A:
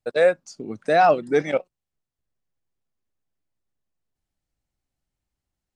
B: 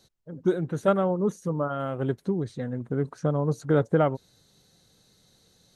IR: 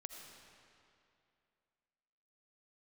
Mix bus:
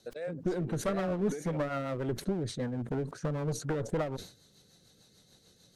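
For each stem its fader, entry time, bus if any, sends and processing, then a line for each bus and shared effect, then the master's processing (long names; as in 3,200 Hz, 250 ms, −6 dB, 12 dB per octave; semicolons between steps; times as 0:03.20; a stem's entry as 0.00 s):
−9.0 dB, 0.00 s, no send, downward compressor 3 to 1, threshold −29 dBFS, peak gain reduction 12.5 dB
+2.0 dB, 0.00 s, no send, downward compressor, threshold −24 dBFS, peak gain reduction 8 dB; low-shelf EQ 90 Hz −4.5 dB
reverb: not used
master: asymmetric clip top −29.5 dBFS; rotating-speaker cabinet horn 6.7 Hz; level that may fall only so fast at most 130 dB per second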